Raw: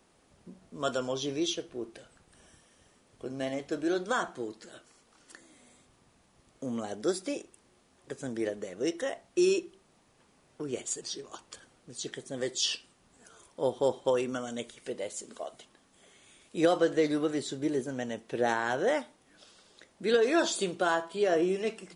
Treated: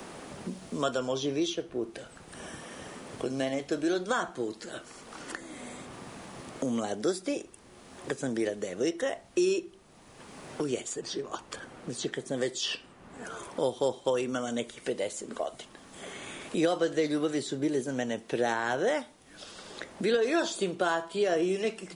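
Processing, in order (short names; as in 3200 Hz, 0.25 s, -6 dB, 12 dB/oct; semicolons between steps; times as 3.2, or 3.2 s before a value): three-band squash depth 70%; gain +1.5 dB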